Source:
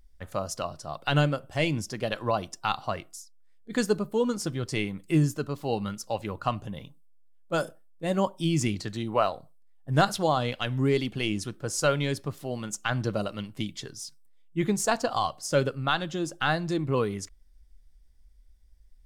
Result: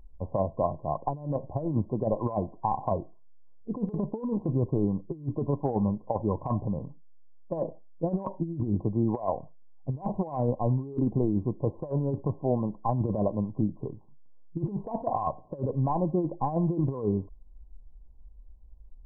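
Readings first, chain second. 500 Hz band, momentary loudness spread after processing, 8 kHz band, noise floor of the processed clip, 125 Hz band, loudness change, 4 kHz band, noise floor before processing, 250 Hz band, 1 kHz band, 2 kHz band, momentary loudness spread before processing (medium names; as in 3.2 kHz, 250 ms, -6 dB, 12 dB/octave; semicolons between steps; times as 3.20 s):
-2.0 dB, 7 LU, under -40 dB, -50 dBFS, +1.0 dB, -1.5 dB, under -40 dB, -55 dBFS, +1.0 dB, -2.5 dB, under -35 dB, 10 LU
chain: brick-wall FIR low-pass 1.1 kHz; compressor with a negative ratio -30 dBFS, ratio -0.5; trim +3.5 dB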